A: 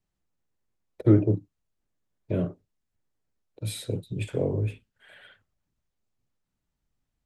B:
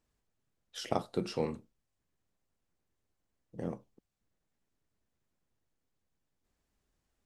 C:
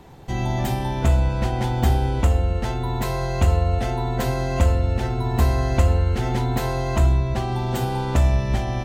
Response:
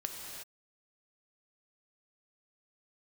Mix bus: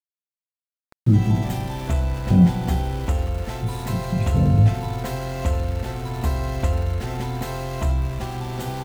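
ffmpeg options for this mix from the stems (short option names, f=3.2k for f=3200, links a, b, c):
-filter_complex "[0:a]lowshelf=f=280:t=q:w=3:g=11.5,volume=-3.5dB,asplit=2[a][b];[b]volume=-9dB[c];[1:a]alimiter=limit=-21dB:level=0:latency=1:release=197,volume=-12.5dB,asplit=2[d][e];[2:a]adelay=850,volume=-6dB,asplit=2[f][g];[g]volume=-12.5dB[h];[e]apad=whole_len=320095[i];[a][i]sidechaincompress=threshold=-55dB:ratio=8:attack=16:release=880[j];[3:a]atrim=start_sample=2205[k];[c][h]amix=inputs=2:normalize=0[l];[l][k]afir=irnorm=-1:irlink=0[m];[j][d][f][m]amix=inputs=4:normalize=0,aeval=exprs='val(0)*gte(abs(val(0)),0.02)':c=same"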